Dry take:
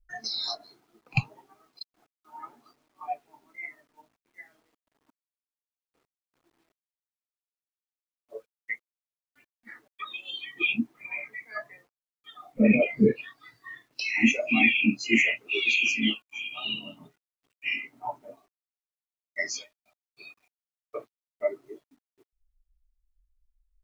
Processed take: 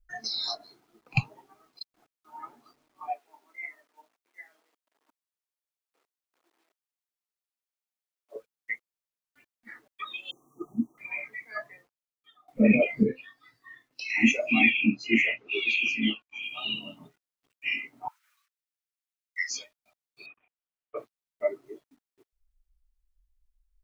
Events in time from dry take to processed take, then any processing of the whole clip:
3.1–8.36 HPF 420 Hz
10.31–10.98 brick-wall FIR band-stop 1300–5600 Hz
11.67–12.48 fade out, to -21.5 dB
13.03–14.1 resonator 260 Hz, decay 0.19 s
14.7–16.43 air absorption 160 m
18.08–19.51 steep high-pass 1300 Hz 48 dB/oct
20.26–20.97 elliptic low-pass 3100 Hz

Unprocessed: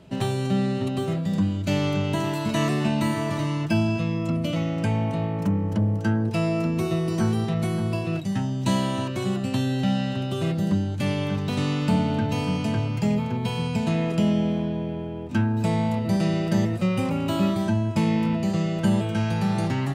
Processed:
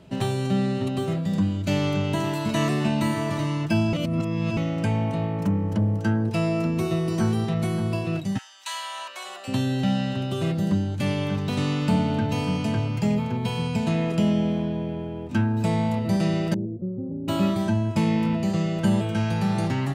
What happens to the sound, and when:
3.93–4.57 reverse
8.37–9.47 HPF 1400 Hz -> 580 Hz 24 dB/oct
16.54–17.28 ladder low-pass 440 Hz, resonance 45%

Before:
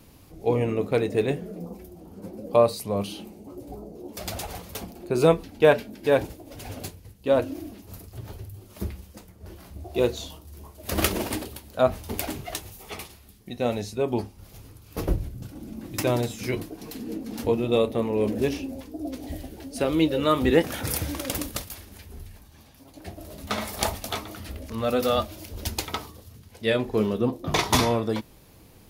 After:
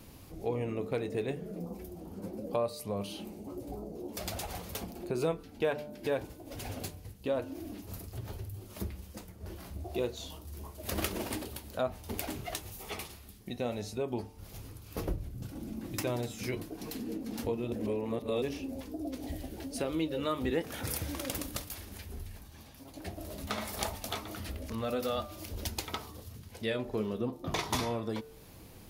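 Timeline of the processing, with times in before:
17.72–18.42 reverse
whole clip: de-hum 148.7 Hz, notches 10; compressor 2:1, threshold -38 dBFS

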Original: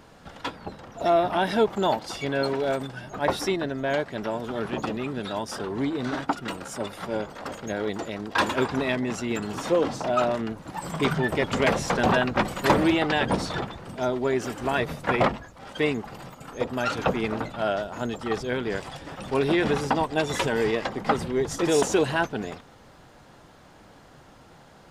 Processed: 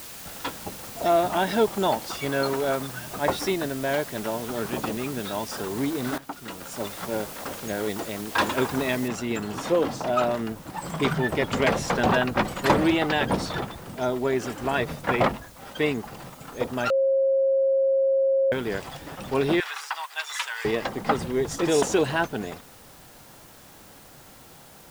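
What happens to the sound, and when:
2.1–3.12 bell 1200 Hz +6 dB 0.45 oct
6.18–6.88 fade in, from -15.5 dB
9.08 noise floor step -41 dB -52 dB
16.9–18.52 bleep 539 Hz -18 dBFS
19.6–20.65 HPF 1100 Hz 24 dB/oct

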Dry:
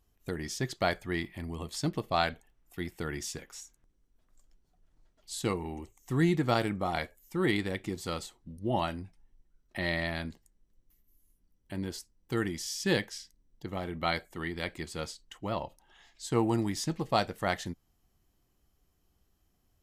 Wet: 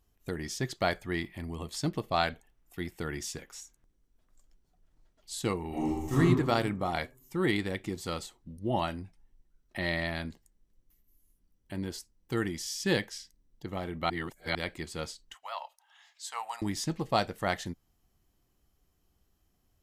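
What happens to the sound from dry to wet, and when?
5.68–6.17 reverb throw, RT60 1.3 s, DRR -10.5 dB
14.1–14.55 reverse
15.34–16.62 inverse Chebyshev high-pass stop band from 380 Hz

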